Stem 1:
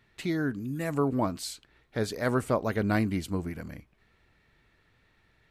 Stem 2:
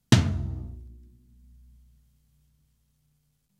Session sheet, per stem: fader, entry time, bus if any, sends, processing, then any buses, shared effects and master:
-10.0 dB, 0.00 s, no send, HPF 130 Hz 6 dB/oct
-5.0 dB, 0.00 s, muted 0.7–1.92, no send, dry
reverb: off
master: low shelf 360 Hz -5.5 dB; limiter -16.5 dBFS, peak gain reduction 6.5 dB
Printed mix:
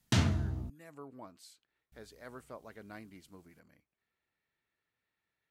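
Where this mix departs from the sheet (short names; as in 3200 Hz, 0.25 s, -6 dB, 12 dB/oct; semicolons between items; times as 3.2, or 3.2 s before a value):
stem 1 -10.0 dB -> -19.0 dB; stem 2 -5.0 dB -> +2.0 dB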